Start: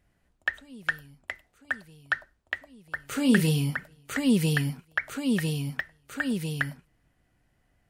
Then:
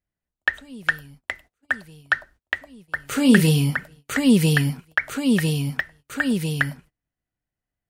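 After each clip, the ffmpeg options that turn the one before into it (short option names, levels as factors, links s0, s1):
-af "agate=range=0.0562:threshold=0.00224:ratio=16:detection=peak,volume=2.11"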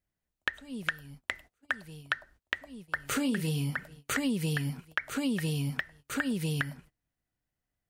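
-af "acompressor=threshold=0.0398:ratio=8"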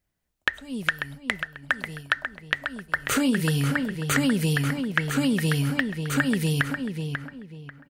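-filter_complex "[0:a]asplit=2[s0][s1];[s1]adelay=541,lowpass=f=2900:p=1,volume=0.501,asplit=2[s2][s3];[s3]adelay=541,lowpass=f=2900:p=1,volume=0.29,asplit=2[s4][s5];[s5]adelay=541,lowpass=f=2900:p=1,volume=0.29,asplit=2[s6][s7];[s7]adelay=541,lowpass=f=2900:p=1,volume=0.29[s8];[s0][s2][s4][s6][s8]amix=inputs=5:normalize=0,volume=2.24"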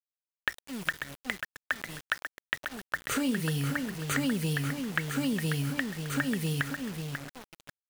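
-af "acrusher=bits=5:mix=0:aa=0.000001,volume=0.473"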